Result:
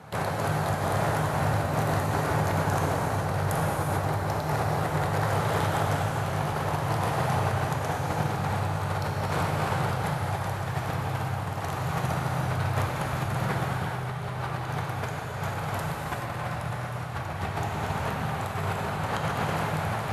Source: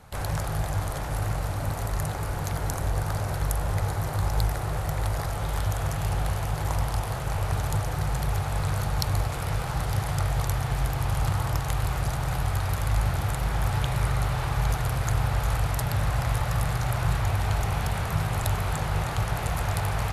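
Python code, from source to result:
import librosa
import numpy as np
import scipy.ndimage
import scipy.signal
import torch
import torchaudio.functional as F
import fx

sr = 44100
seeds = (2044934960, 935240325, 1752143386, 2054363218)

y = scipy.signal.sosfilt(scipy.signal.butter(4, 110.0, 'highpass', fs=sr, output='sos'), x)
y = fx.high_shelf(y, sr, hz=3700.0, db=-10.5)
y = fx.over_compress(y, sr, threshold_db=-34.0, ratio=-0.5)
y = fx.rev_gated(y, sr, seeds[0], gate_ms=470, shape='flat', drr_db=-2.5)
y = y * 10.0 ** (2.5 / 20.0)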